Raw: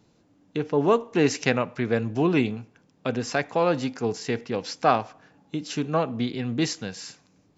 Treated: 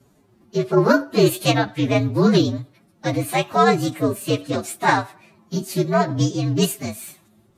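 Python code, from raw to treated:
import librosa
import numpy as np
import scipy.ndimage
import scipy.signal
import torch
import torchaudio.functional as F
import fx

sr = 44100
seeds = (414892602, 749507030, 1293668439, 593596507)

y = fx.partial_stretch(x, sr, pct=119)
y = fx.pitch_keep_formants(y, sr, semitones=3.5)
y = y * 10.0 ** (8.5 / 20.0)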